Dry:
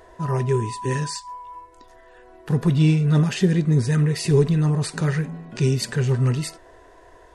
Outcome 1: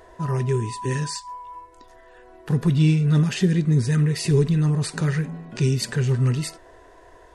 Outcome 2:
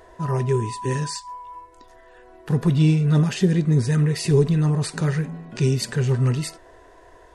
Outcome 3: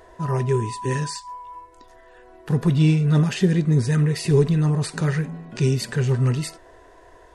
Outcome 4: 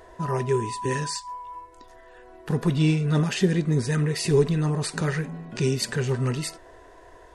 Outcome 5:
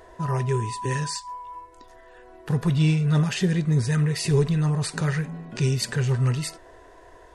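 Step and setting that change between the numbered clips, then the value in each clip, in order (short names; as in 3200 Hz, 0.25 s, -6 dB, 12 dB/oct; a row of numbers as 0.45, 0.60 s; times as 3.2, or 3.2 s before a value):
dynamic EQ, frequency: 730, 1900, 6400, 110, 290 Hz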